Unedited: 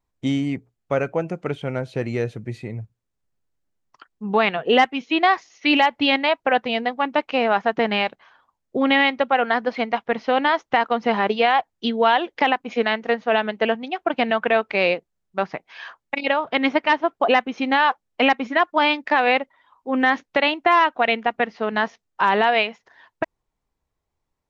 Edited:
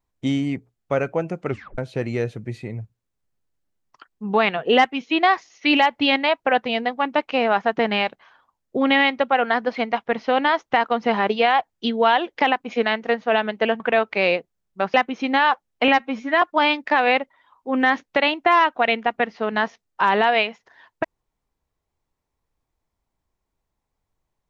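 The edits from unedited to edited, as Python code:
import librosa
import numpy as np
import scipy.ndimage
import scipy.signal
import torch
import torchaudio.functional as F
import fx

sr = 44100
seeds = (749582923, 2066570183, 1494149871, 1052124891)

y = fx.edit(x, sr, fx.tape_stop(start_s=1.49, length_s=0.29),
    fx.cut(start_s=13.8, length_s=0.58),
    fx.cut(start_s=15.52, length_s=1.8),
    fx.stretch_span(start_s=18.26, length_s=0.36, factor=1.5), tone=tone)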